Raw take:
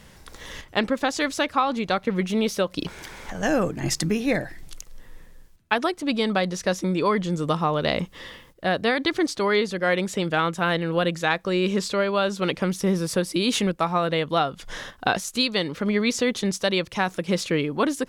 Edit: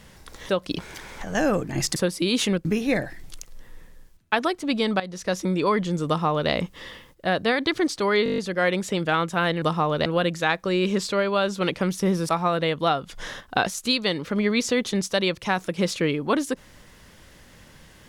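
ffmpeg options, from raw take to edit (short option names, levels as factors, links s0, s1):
-filter_complex "[0:a]asplit=15[s0][s1][s2][s3][s4][s5][s6][s7][s8][s9][s10][s11][s12][s13][s14];[s0]atrim=end=0.492[s15];[s1]atrim=start=2.568:end=4.042[s16];[s2]atrim=start=13.098:end=13.792[s17];[s3]atrim=start=4.038:end=6.39,asetpts=PTS-STARTPTS,afade=t=out:st=2.348:d=0.004:c=hsin:silence=0.199526[s18];[s4]atrim=start=6.39:end=9.652,asetpts=PTS-STARTPTS,afade=t=in:d=0.4:silence=0.199526[s19];[s5]atrim=start=9.628:end=9.652[s20];[s6]atrim=start=9.628:end=9.652[s21];[s7]atrim=start=9.628:end=9.652[s22];[s8]atrim=start=9.628:end=9.652[s23];[s9]atrim=start=9.628:end=9.652[s24];[s10]atrim=start=9.628:end=9.652[s25];[s11]atrim=start=9.628:end=10.872[s26];[s12]atrim=start=7.458:end=7.902[s27];[s13]atrim=start=10.868:end=13.102[s28];[s14]atrim=start=13.788[s29];[s15][s16]acrossfade=d=0.004:c1=hsin:c2=hsin[s30];[s30][s17]acrossfade=d=0.004:c1=hsin:c2=hsin[s31];[s18][s19]concat=n=2:v=0:a=1[s32];[s31][s32]acrossfade=d=0.004:c1=hsin:c2=hsin[s33];[s33][s20]acrossfade=d=0.004:c1=hsin:c2=hsin[s34];[s34][s21]acrossfade=d=0.004:c1=hsin:c2=hsin[s35];[s35][s22]acrossfade=d=0.004:c1=hsin:c2=hsin[s36];[s36][s23]acrossfade=d=0.004:c1=hsin:c2=hsin[s37];[s37][s24]acrossfade=d=0.004:c1=hsin:c2=hsin[s38];[s38][s25]acrossfade=d=0.004:c1=hsin:c2=hsin[s39];[s39][s26]acrossfade=d=0.004:c1=hsin:c2=hsin[s40];[s40][s27]acrossfade=d=0.004:c1=hsin:c2=hsin[s41];[s41][s28]acrossfade=d=0.004:c1=hsin:c2=hsin[s42];[s42][s29]acrossfade=d=0.004:c1=hsin:c2=hsin"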